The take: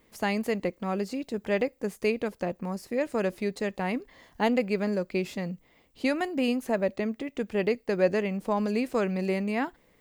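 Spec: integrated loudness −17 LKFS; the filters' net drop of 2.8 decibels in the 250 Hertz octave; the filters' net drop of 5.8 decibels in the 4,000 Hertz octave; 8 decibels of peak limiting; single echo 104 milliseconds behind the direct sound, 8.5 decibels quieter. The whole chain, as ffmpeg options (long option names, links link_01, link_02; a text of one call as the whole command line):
ffmpeg -i in.wav -af "equalizer=frequency=250:width_type=o:gain=-3.5,equalizer=frequency=4000:width_type=o:gain=-8.5,alimiter=limit=-21dB:level=0:latency=1,aecho=1:1:104:0.376,volume=15dB" out.wav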